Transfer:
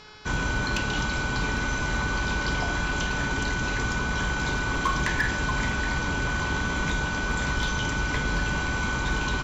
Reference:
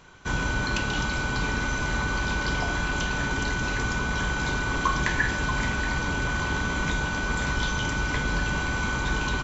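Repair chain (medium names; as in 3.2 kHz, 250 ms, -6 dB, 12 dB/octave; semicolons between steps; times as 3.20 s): clip repair -17.5 dBFS; de-hum 426.3 Hz, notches 13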